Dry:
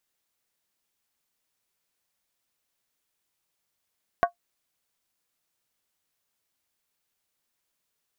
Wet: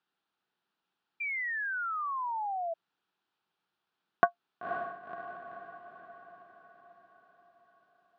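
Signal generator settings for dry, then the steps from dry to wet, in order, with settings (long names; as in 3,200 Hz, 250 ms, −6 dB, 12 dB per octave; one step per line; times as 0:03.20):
struck skin, lowest mode 697 Hz, decay 0.11 s, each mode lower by 5 dB, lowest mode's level −13 dB
loudspeaker in its box 150–3,800 Hz, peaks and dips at 180 Hz +5 dB, 360 Hz +4 dB, 560 Hz −7 dB, 820 Hz +5 dB, 1,400 Hz +7 dB, 2,100 Hz −8 dB
feedback delay with all-pass diffusion 519 ms, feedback 55%, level −6.5 dB
sound drawn into the spectrogram fall, 0:01.20–0:02.74, 650–2,400 Hz −34 dBFS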